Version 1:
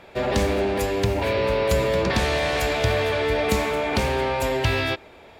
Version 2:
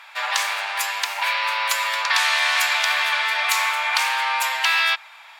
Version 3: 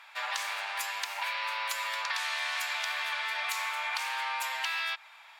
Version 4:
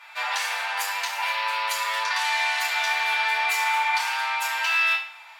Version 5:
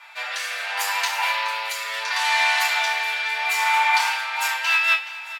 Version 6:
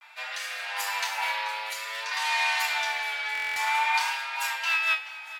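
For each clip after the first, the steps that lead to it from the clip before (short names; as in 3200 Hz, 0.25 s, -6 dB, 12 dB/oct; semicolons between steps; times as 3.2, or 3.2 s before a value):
steep high-pass 920 Hz 36 dB/oct; gain +8 dB
compressor 6:1, threshold -21 dBFS, peak gain reduction 6.5 dB; gain -8.5 dB
FDN reverb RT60 0.53 s, low-frequency decay 0.8×, high-frequency decay 0.85×, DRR -6 dB
rotary speaker horn 0.7 Hz, later 6 Hz, at 3.99; feedback echo 0.424 s, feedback 43%, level -16 dB; gain +5 dB
vibrato 0.53 Hz 54 cents; stuck buffer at 3.33, samples 1024, times 9; gain -6 dB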